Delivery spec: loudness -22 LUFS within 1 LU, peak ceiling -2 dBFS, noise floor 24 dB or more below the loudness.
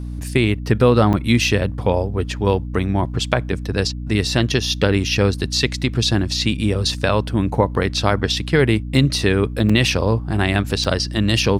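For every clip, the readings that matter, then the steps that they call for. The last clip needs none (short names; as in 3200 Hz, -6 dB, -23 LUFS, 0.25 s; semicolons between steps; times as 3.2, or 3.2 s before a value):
dropouts 3; longest dropout 5.6 ms; hum 60 Hz; harmonics up to 300 Hz; hum level -25 dBFS; loudness -18.5 LUFS; peak -1.5 dBFS; loudness target -22.0 LUFS
-> interpolate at 1.13/9.69/10.84, 5.6 ms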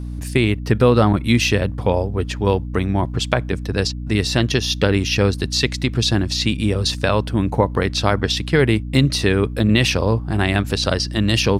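dropouts 0; hum 60 Hz; harmonics up to 300 Hz; hum level -25 dBFS
-> de-hum 60 Hz, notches 5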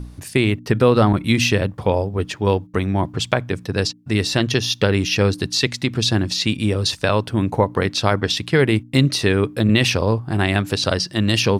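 hum none; loudness -19.0 LUFS; peak -1.0 dBFS; loudness target -22.0 LUFS
-> gain -3 dB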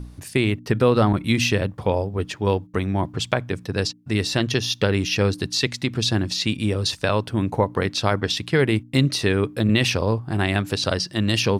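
loudness -22.0 LUFS; peak -4.0 dBFS; noise floor -46 dBFS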